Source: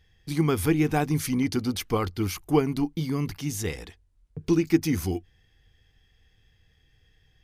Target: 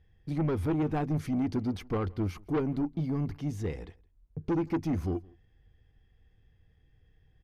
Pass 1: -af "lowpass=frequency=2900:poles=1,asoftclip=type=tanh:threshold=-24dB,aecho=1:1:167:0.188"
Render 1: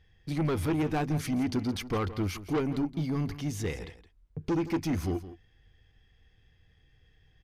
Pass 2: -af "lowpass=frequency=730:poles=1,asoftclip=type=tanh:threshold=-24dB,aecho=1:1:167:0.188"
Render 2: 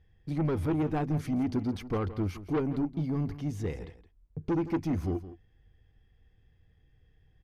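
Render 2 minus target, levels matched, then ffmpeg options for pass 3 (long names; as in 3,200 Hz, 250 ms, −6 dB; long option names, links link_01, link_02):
echo-to-direct +11.5 dB
-af "lowpass=frequency=730:poles=1,asoftclip=type=tanh:threshold=-24dB,aecho=1:1:167:0.0501"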